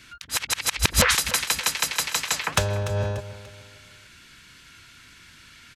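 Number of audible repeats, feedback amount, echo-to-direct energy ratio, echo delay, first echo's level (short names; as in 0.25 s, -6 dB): 3, 37%, -14.0 dB, 0.292 s, -14.5 dB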